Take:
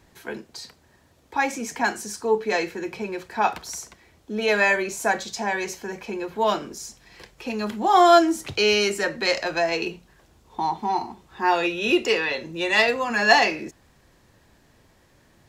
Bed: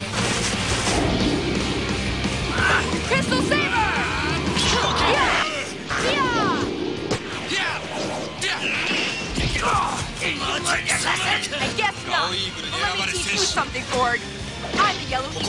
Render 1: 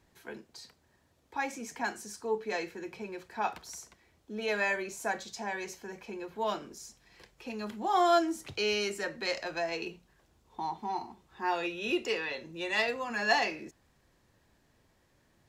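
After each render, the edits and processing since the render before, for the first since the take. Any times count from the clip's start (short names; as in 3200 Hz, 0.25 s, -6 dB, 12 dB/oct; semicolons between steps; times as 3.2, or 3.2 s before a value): gain -10.5 dB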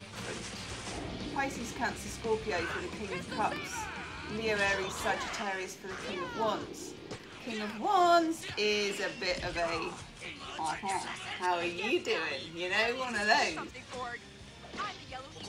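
add bed -19 dB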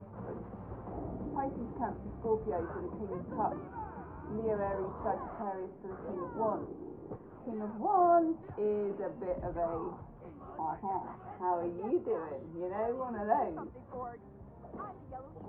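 LPF 1000 Hz 24 dB/oct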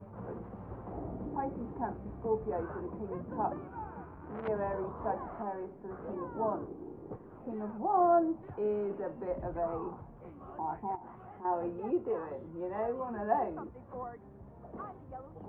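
4.05–4.48 core saturation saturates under 1200 Hz; 10.95–11.45 compressor 3:1, threshold -46 dBFS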